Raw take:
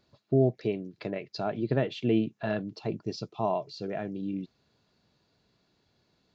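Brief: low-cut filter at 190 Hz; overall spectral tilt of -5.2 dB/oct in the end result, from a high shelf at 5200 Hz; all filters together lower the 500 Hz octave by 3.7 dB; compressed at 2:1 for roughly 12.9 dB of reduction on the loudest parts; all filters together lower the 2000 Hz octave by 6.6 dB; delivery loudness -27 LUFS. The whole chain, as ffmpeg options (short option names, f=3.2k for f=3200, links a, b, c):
-af "highpass=190,equalizer=f=500:t=o:g=-4.5,equalizer=f=2k:t=o:g=-9,highshelf=f=5.2k:g=3.5,acompressor=threshold=-47dB:ratio=2,volume=18dB"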